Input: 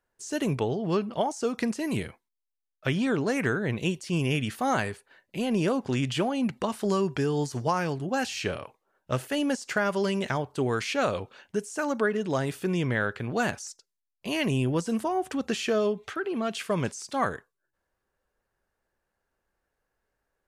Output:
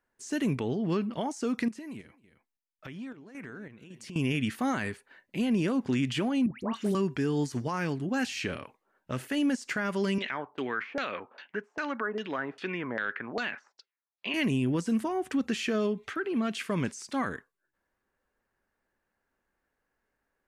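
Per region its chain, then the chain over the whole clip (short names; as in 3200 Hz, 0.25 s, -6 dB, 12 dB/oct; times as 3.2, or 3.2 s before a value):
1.68–4.16 compressor 16:1, threshold -39 dBFS + echo 0.268 s -17 dB + chopper 1.8 Hz, depth 60%, duty 60%
6.46–6.95 dispersion highs, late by 0.128 s, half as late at 1600 Hz + three-band expander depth 70%
10.18–14.34 weighting filter A + LFO low-pass saw down 2.5 Hz 610–4900 Hz
whole clip: graphic EQ 250/1000/2000 Hz +8/+3/+6 dB; limiter -15 dBFS; dynamic EQ 770 Hz, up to -5 dB, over -39 dBFS, Q 0.97; gain -4 dB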